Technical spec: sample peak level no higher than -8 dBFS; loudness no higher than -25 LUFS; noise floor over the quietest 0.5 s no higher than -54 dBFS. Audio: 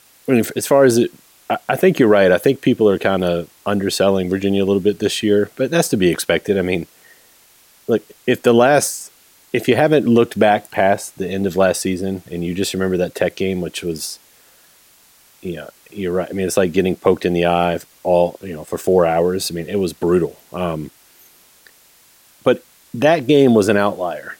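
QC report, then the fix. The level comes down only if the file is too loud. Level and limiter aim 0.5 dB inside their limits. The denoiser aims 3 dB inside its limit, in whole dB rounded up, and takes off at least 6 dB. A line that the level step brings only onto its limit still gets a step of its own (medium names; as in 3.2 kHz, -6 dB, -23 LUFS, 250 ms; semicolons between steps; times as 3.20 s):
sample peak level -2.0 dBFS: fail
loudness -17.0 LUFS: fail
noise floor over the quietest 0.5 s -51 dBFS: fail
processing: trim -8.5 dB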